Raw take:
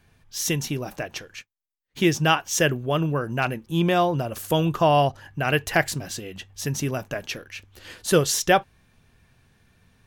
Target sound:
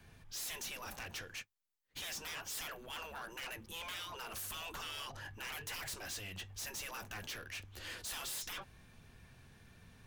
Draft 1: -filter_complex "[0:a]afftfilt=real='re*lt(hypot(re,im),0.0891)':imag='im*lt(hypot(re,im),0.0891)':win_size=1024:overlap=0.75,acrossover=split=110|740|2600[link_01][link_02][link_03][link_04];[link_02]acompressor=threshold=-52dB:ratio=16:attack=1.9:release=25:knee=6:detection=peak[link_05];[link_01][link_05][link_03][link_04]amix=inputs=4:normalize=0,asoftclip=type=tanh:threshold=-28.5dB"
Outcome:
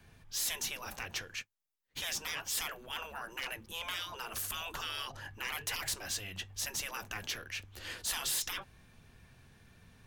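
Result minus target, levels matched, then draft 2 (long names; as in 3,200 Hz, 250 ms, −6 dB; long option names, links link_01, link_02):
soft clipping: distortion −9 dB
-filter_complex "[0:a]afftfilt=real='re*lt(hypot(re,im),0.0891)':imag='im*lt(hypot(re,im),0.0891)':win_size=1024:overlap=0.75,acrossover=split=110|740|2600[link_01][link_02][link_03][link_04];[link_02]acompressor=threshold=-52dB:ratio=16:attack=1.9:release=25:knee=6:detection=peak[link_05];[link_01][link_05][link_03][link_04]amix=inputs=4:normalize=0,asoftclip=type=tanh:threshold=-40.5dB"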